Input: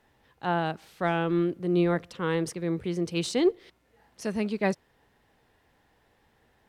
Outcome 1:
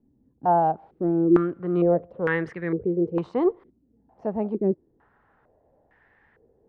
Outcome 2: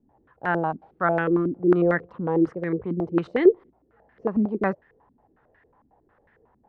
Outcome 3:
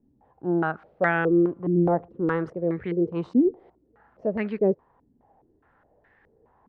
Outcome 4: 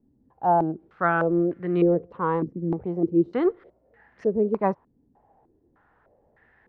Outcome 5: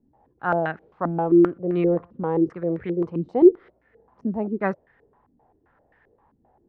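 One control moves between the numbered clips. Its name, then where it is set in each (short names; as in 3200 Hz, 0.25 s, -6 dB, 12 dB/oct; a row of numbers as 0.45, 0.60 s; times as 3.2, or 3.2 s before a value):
stepped low-pass, rate: 2.2, 11, 4.8, 3.3, 7.6 Hz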